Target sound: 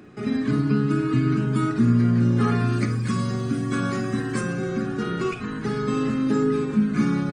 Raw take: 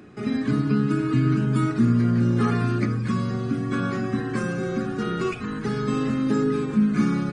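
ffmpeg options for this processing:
-filter_complex "[0:a]asettb=1/sr,asplit=3[a][b][c];[a]atrim=end=2.724[d];[b]atrim=start=2.72:end=4.41,asetpts=PTS-STARTPTS,afade=t=in:d=0.004:c=qsin,afade=t=out:st=1.686:d=0.004:c=qsin,aemphasis=mode=production:type=50fm[e];[c]atrim=start=4.406[f];[d][e]acrossfade=d=0.004:c1=hsin:c2=qsin[g];[g][f]acrossfade=d=0.004:c1=qsin:c2=hsin,asplit=2[h][i];[i]adelay=50,volume=-12dB[j];[h][j]amix=inputs=2:normalize=0"

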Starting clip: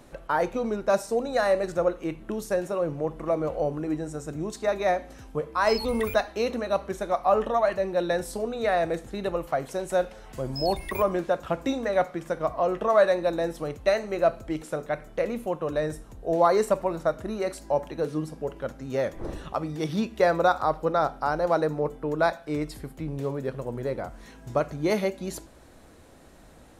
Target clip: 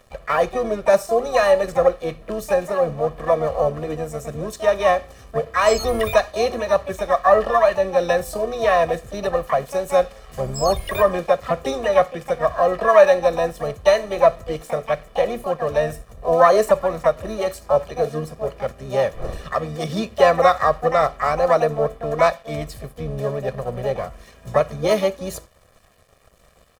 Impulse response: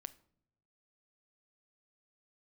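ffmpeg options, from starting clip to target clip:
-filter_complex "[0:a]aeval=exprs='sgn(val(0))*max(abs(val(0))-0.00299,0)':c=same,asplit=2[a][b];[b]asetrate=66075,aresample=44100,atempo=0.66742,volume=-6dB[c];[a][c]amix=inputs=2:normalize=0,aecho=1:1:1.7:0.65,volume=4dB"

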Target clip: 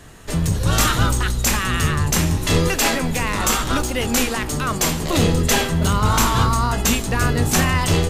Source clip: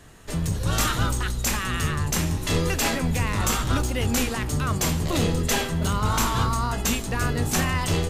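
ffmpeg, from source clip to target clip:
-filter_complex "[0:a]asettb=1/sr,asplit=3[a][b][c];[a]atrim=end=2.684[d];[b]atrim=start=2.68:end=5.17,asetpts=PTS-STARTPTS,afade=t=in:d=0.004:c=qsin,afade=t=out:st=2.486:d=0.004:c=qsin,equalizer=f=91:w=0.96:g=-11[e];[c]atrim=start=5.166[f];[d][e]acrossfade=d=0.004:c1=hsin:c2=qsin[g];[g][f]acrossfade=d=0.004:c1=qsin:c2=hsin,volume=6dB"

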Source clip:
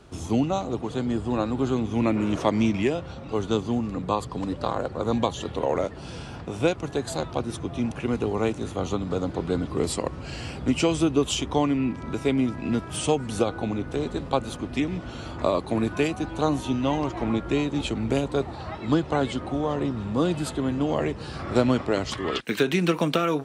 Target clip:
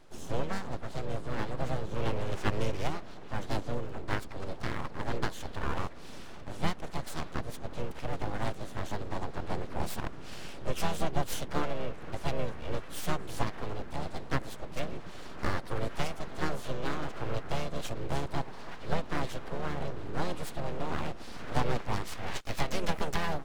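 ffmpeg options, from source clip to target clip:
-filter_complex "[0:a]aeval=exprs='abs(val(0))':c=same,asplit=3[a][b][c];[b]asetrate=22050,aresample=44100,atempo=2,volume=-7dB[d];[c]asetrate=52444,aresample=44100,atempo=0.840896,volume=-5dB[e];[a][d][e]amix=inputs=3:normalize=0,volume=-8dB"

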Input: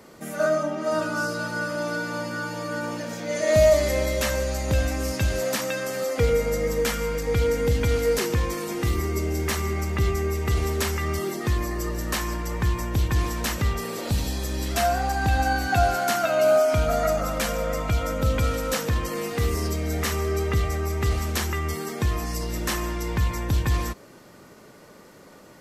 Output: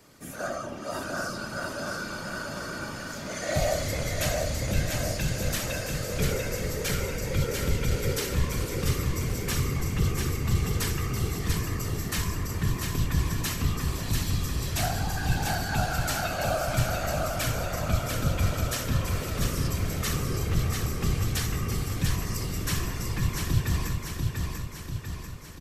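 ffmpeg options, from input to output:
-af "equalizer=f=530:t=o:w=2.7:g=-9.5,bandreject=f=2k:w=18,afftfilt=real='hypot(re,im)*cos(2*PI*random(0))':imag='hypot(re,im)*sin(2*PI*random(1))':win_size=512:overlap=0.75,aecho=1:1:692|1384|2076|2768|3460|4152|4844|5536:0.631|0.353|0.198|0.111|0.0621|0.0347|0.0195|0.0109,volume=4dB"

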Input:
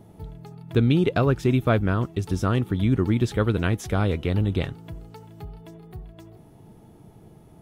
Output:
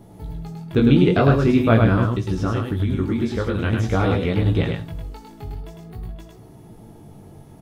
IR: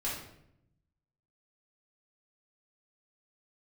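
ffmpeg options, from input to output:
-filter_complex "[0:a]asplit=2[a][b];[b]highshelf=f=3.6k:t=q:w=1.5:g=6.5[c];[1:a]atrim=start_sample=2205,afade=t=out:st=0.14:d=0.01,atrim=end_sample=6615[d];[c][d]afir=irnorm=-1:irlink=0,volume=-12.5dB[e];[a][e]amix=inputs=2:normalize=0,flanger=delay=16:depth=5.6:speed=0.47,asettb=1/sr,asplit=3[f][g][h];[f]atrim=end=2.084[i];[g]atrim=start=2.08:end=3.73,asetpts=PTS-STARTPTS,afade=t=in:d=0.004:c=qsin,afade=t=out:st=1.646:d=0.004:c=qsin,acompressor=threshold=-25dB:ratio=6[j];[h]atrim=start=3.726[k];[i][j]acrossfade=d=0.004:c1=hsin:c2=qsin[l];[l][k]acrossfade=d=0.004:c1=qsin:c2=hsin,aecho=1:1:104:0.631,acrossover=split=4600[m][n];[n]acompressor=threshold=-57dB:ratio=4:attack=1:release=60[o];[m][o]amix=inputs=2:normalize=0,volume=5.5dB"

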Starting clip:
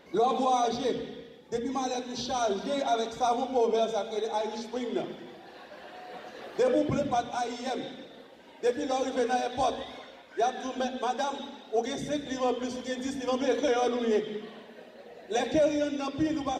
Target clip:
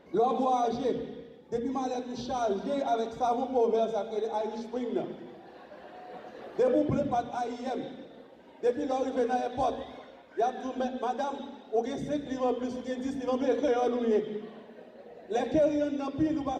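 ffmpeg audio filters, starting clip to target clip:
-af "tiltshelf=f=1.5k:g=5.5,volume=-4.5dB"

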